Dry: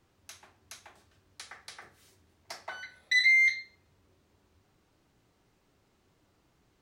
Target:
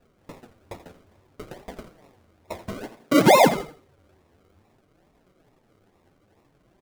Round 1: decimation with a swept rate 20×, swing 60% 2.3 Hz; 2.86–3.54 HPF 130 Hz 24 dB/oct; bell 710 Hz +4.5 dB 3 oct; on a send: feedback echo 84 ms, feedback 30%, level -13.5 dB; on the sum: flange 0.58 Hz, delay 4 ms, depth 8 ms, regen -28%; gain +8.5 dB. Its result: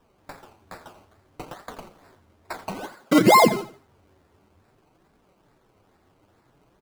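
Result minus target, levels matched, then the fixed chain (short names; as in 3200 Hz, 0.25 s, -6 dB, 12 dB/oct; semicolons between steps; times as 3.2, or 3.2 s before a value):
decimation with a swept rate: distortion -6 dB
decimation with a swept rate 40×, swing 60% 2.3 Hz; 2.86–3.54 HPF 130 Hz 24 dB/oct; bell 710 Hz +4.5 dB 3 oct; on a send: feedback echo 84 ms, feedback 30%, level -13.5 dB; on the sum: flange 0.58 Hz, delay 4 ms, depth 8 ms, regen -28%; gain +8.5 dB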